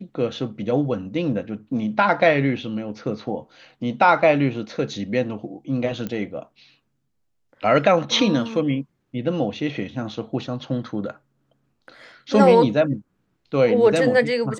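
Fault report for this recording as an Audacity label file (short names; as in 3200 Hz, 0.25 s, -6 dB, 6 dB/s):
6.070000	6.070000	pop -16 dBFS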